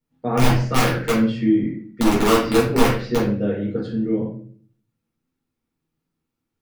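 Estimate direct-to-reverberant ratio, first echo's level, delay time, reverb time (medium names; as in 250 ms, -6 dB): -7.5 dB, no echo, no echo, 0.45 s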